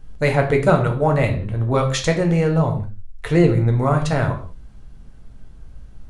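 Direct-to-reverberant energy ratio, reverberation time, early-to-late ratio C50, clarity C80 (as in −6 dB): 3.0 dB, non-exponential decay, 10.0 dB, 14.0 dB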